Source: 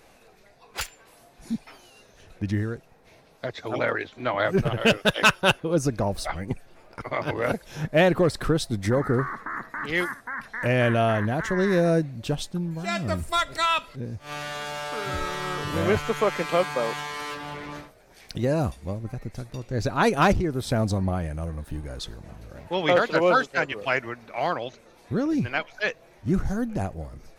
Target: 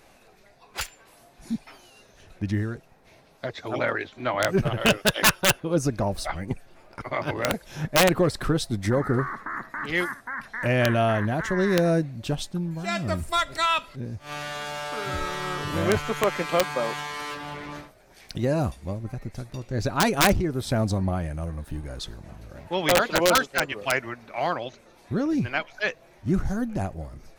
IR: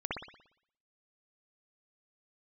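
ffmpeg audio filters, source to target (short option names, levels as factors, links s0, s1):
-af "aeval=exprs='(mod(3.35*val(0)+1,2)-1)/3.35':c=same,bandreject=f=470:w=12"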